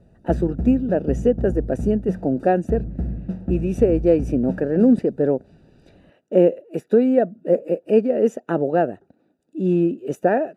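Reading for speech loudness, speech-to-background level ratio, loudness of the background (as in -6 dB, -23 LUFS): -20.5 LUFS, 9.5 dB, -30.0 LUFS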